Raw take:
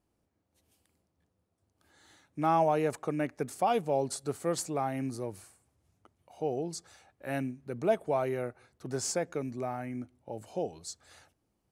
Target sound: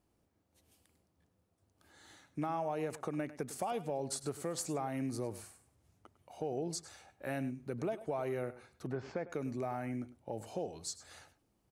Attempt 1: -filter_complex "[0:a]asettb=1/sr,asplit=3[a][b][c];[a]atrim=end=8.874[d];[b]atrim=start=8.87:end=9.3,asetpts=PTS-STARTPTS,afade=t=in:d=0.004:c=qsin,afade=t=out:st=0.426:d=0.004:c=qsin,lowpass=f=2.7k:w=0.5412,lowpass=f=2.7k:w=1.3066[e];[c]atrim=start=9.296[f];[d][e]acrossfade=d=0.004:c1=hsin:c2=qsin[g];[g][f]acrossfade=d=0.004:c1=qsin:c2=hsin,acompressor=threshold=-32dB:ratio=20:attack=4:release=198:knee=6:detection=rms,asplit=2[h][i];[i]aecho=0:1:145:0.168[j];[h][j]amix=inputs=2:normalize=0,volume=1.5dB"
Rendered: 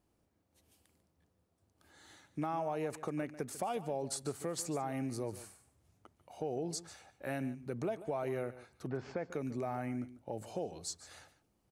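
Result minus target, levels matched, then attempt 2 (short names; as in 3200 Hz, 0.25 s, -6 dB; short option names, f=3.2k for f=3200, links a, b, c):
echo 43 ms late
-filter_complex "[0:a]asettb=1/sr,asplit=3[a][b][c];[a]atrim=end=8.874[d];[b]atrim=start=8.87:end=9.3,asetpts=PTS-STARTPTS,afade=t=in:d=0.004:c=qsin,afade=t=out:st=0.426:d=0.004:c=qsin,lowpass=f=2.7k:w=0.5412,lowpass=f=2.7k:w=1.3066[e];[c]atrim=start=9.296[f];[d][e]acrossfade=d=0.004:c1=hsin:c2=qsin[g];[g][f]acrossfade=d=0.004:c1=qsin:c2=hsin,acompressor=threshold=-32dB:ratio=20:attack=4:release=198:knee=6:detection=rms,asplit=2[h][i];[i]aecho=0:1:102:0.168[j];[h][j]amix=inputs=2:normalize=0,volume=1.5dB"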